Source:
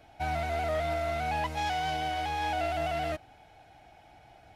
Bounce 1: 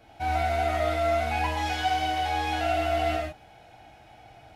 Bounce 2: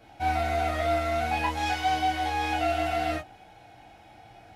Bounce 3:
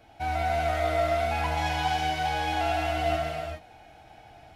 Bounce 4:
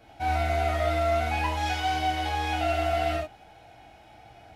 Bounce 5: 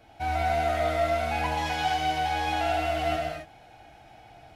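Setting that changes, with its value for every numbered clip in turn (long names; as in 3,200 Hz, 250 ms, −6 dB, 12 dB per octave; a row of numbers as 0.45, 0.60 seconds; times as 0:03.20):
reverb whose tail is shaped and stops, gate: 180, 80, 450, 120, 300 milliseconds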